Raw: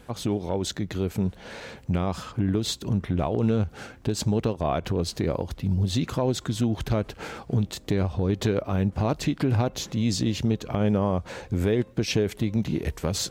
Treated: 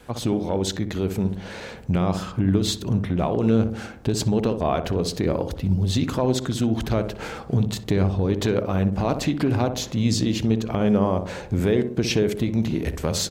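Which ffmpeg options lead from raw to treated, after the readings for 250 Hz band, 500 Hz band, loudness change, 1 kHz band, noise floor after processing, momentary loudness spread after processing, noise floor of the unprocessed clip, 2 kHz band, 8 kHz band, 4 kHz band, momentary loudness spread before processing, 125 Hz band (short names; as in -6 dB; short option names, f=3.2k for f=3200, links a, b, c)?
+4.0 dB, +3.5 dB, +3.0 dB, +3.5 dB, -38 dBFS, 5 LU, -49 dBFS, +3.0 dB, +3.0 dB, +3.0 dB, 5 LU, +2.5 dB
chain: -filter_complex "[0:a]adynamicequalizer=threshold=0.0141:dfrequency=110:dqfactor=1.2:tfrequency=110:tqfactor=1.2:attack=5:release=100:ratio=0.375:range=3:mode=cutabove:tftype=bell,asplit=2[a][b];[b]adelay=62,lowpass=f=830:p=1,volume=-6.5dB,asplit=2[c][d];[d]adelay=62,lowpass=f=830:p=1,volume=0.55,asplit=2[e][f];[f]adelay=62,lowpass=f=830:p=1,volume=0.55,asplit=2[g][h];[h]adelay=62,lowpass=f=830:p=1,volume=0.55,asplit=2[i][j];[j]adelay=62,lowpass=f=830:p=1,volume=0.55,asplit=2[k][l];[l]adelay=62,lowpass=f=830:p=1,volume=0.55,asplit=2[m][n];[n]adelay=62,lowpass=f=830:p=1,volume=0.55[o];[c][e][g][i][k][m][o]amix=inputs=7:normalize=0[p];[a][p]amix=inputs=2:normalize=0,volume=3dB"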